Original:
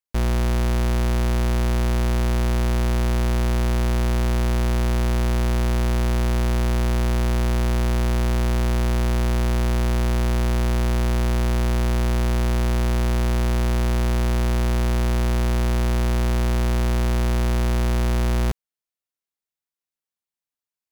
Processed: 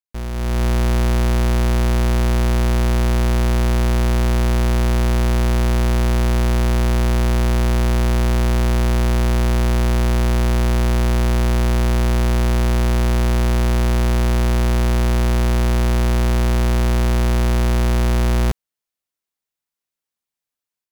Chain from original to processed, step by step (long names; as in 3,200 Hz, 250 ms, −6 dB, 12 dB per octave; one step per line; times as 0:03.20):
automatic gain control gain up to 11 dB
level −7 dB